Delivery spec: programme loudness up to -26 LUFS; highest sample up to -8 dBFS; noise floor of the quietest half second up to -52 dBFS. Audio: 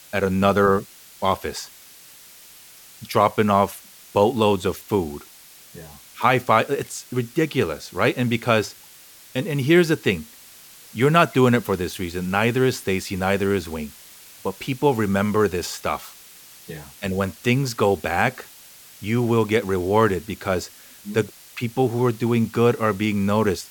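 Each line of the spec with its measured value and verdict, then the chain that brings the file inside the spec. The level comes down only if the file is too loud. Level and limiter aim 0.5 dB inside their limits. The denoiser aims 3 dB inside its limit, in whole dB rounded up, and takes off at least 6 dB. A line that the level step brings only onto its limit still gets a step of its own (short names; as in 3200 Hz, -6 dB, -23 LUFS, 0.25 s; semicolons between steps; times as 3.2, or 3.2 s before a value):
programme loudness -21.5 LUFS: fail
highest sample -3.5 dBFS: fail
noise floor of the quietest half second -47 dBFS: fail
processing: denoiser 6 dB, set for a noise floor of -47 dBFS; gain -5 dB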